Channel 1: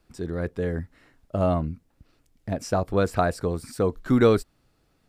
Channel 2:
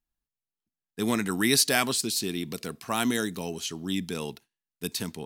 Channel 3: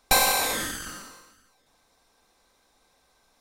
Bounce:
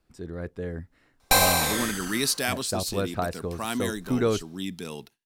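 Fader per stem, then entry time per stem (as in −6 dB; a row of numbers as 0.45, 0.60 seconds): −6.0, −3.5, +0.5 decibels; 0.00, 0.70, 1.20 seconds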